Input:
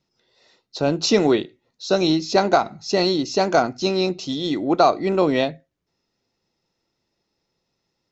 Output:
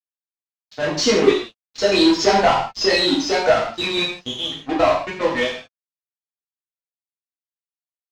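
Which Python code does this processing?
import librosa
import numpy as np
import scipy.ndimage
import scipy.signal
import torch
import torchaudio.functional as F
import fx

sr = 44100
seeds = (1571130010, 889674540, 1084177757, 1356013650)

p1 = fx.bin_expand(x, sr, power=2.0)
p2 = fx.doppler_pass(p1, sr, speed_mps=18, closest_m=13.0, pass_at_s=2.35)
p3 = fx.highpass(p2, sr, hz=880.0, slope=6)
p4 = fx.high_shelf(p3, sr, hz=6300.0, db=5.5)
p5 = fx.leveller(p4, sr, passes=1)
p6 = fx.tremolo_shape(p5, sr, shape='saw_down', hz=7.3, depth_pct=60)
p7 = fx.fuzz(p6, sr, gain_db=44.0, gate_db=-43.0)
p8 = p6 + (p7 * librosa.db_to_amplitude(-5.5))
p9 = fx.quant_dither(p8, sr, seeds[0], bits=8, dither='none')
p10 = fx.air_absorb(p9, sr, metres=140.0)
p11 = fx.rev_gated(p10, sr, seeds[1], gate_ms=200, shape='falling', drr_db=-5.5)
y = p11 * librosa.db_to_amplitude(-1.5)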